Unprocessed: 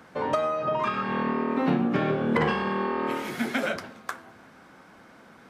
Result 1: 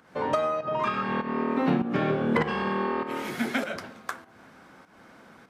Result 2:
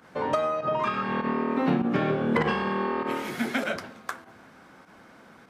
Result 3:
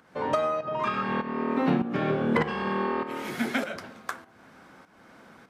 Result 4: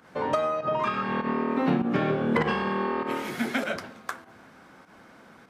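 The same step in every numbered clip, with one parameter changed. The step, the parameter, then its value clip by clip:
pump, release: 259, 66, 425, 100 ms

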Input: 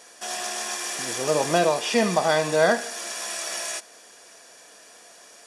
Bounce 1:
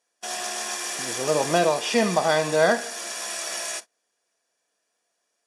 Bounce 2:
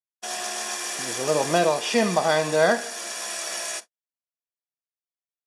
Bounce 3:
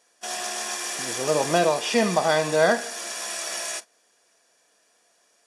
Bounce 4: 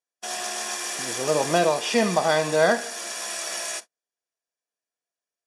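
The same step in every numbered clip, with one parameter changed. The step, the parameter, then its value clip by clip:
gate, range: -27, -60, -15, -44 dB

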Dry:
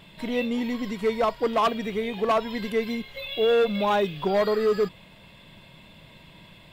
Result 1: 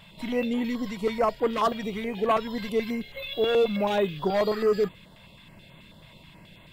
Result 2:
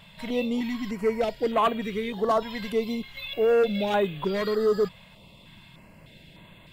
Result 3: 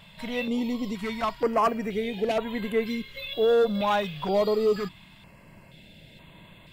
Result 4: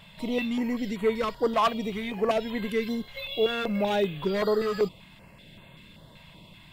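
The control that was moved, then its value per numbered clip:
stepped notch, rate: 9.3, 3.3, 2.1, 5.2 Hz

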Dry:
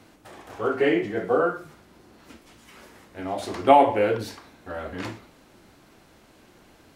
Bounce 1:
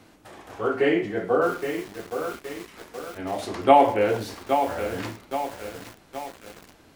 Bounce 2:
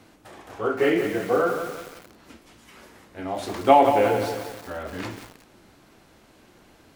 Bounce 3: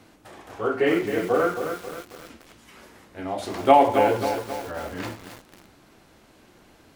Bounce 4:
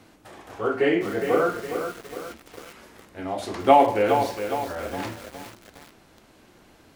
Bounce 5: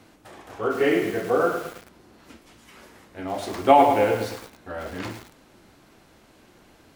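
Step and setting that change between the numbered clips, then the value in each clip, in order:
lo-fi delay, time: 0.82, 0.177, 0.267, 0.412, 0.107 s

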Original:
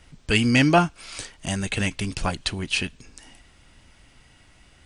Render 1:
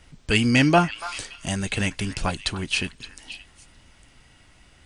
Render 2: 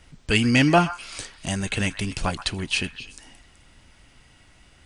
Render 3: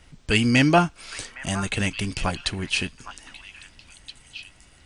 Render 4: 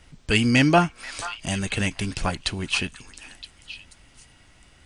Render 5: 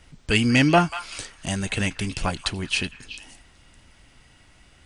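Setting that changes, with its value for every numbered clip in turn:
delay with a stepping band-pass, time: 0.285, 0.126, 0.812, 0.484, 0.188 s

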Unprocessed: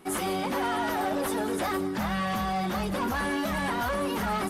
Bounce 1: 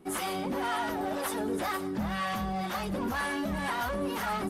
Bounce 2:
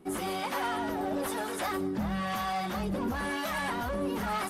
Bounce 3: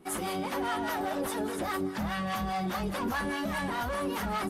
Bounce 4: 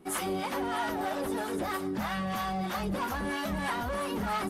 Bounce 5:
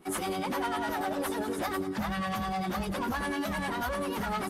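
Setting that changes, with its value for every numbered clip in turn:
harmonic tremolo, rate: 2, 1, 4.9, 3.1, 10 Hz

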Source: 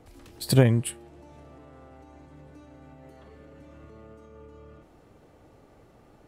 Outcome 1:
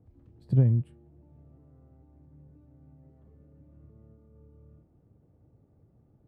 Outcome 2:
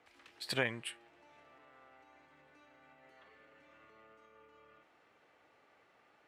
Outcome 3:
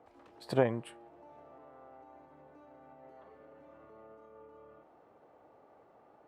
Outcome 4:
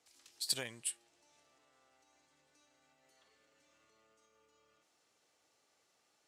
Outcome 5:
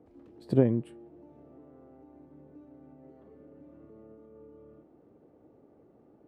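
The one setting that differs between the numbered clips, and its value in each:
band-pass, frequency: 110, 2100, 810, 6200, 320 Hz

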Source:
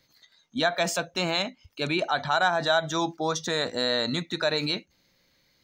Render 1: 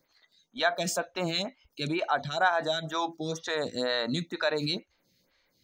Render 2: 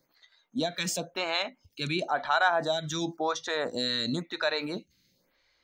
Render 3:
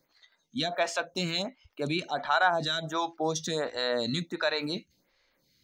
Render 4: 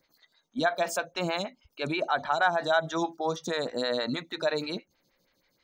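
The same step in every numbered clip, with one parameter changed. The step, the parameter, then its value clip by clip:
photocell phaser, rate: 2.1, 0.96, 1.4, 6.3 Hz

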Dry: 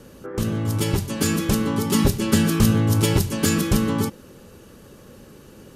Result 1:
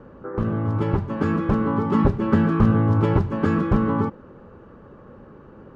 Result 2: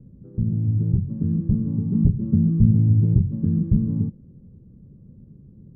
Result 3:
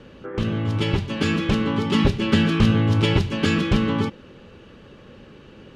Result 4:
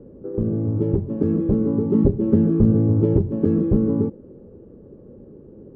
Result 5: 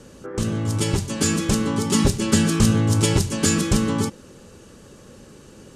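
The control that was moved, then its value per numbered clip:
synth low-pass, frequency: 1200, 160, 3000, 420, 8000 Hz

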